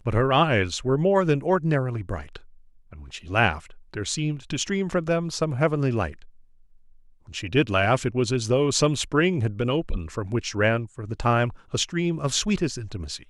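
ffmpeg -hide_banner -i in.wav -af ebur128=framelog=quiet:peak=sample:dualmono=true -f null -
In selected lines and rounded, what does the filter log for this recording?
Integrated loudness:
  I:         -21.2 LUFS
  Threshold: -31.9 LUFS
Loudness range:
  LRA:         3.9 LU
  Threshold: -42.3 LUFS
  LRA low:   -24.4 LUFS
  LRA high:  -20.6 LUFS
Sample peak:
  Peak:       -5.0 dBFS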